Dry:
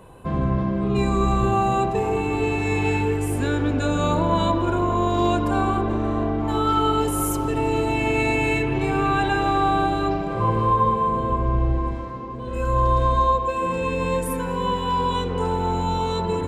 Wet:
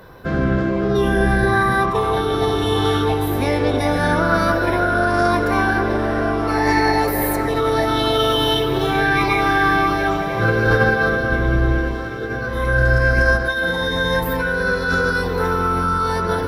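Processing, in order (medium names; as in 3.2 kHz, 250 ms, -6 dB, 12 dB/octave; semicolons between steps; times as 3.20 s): echo that smears into a reverb 1273 ms, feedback 43%, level -13 dB; formant shift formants +6 st; trim +3.5 dB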